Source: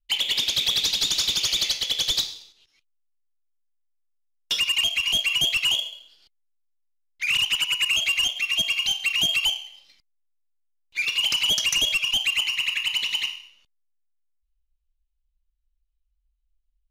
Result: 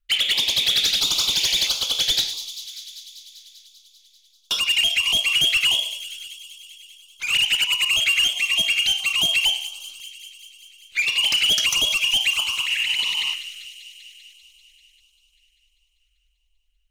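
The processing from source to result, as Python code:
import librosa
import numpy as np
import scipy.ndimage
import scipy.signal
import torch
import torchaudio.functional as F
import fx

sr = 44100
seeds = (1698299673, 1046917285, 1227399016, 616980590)

y = fx.peak_eq(x, sr, hz=1300.0, db=12.5, octaves=1.5)
y = fx.over_compress(y, sr, threshold_db=-25.0, ratio=-1.0, at=(12.64, 13.33), fade=0.02)
y = 10.0 ** (-16.0 / 20.0) * np.tanh(y / 10.0 ** (-16.0 / 20.0))
y = fx.echo_wet_highpass(y, sr, ms=196, feedback_pct=74, hz=4600.0, wet_db=-9)
y = fx.filter_held_notch(y, sr, hz=3.0, low_hz=940.0, high_hz=1900.0)
y = y * librosa.db_to_amplitude(3.0)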